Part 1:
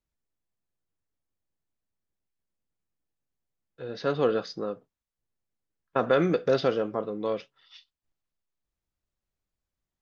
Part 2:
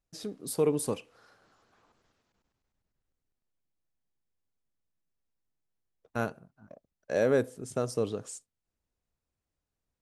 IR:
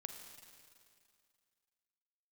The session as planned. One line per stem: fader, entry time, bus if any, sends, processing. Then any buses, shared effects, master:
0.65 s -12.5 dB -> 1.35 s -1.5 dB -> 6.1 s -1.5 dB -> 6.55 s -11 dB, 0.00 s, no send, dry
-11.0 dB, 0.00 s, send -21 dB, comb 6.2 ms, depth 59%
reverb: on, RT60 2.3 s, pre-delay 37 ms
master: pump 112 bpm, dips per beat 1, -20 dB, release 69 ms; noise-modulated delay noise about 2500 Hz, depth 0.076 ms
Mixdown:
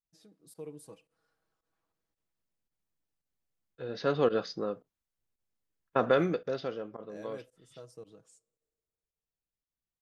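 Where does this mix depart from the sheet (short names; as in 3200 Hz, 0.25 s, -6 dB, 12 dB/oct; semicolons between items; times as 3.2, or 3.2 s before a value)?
stem 2 -11.0 dB -> -21.0 dB; master: missing noise-modulated delay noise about 2500 Hz, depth 0.076 ms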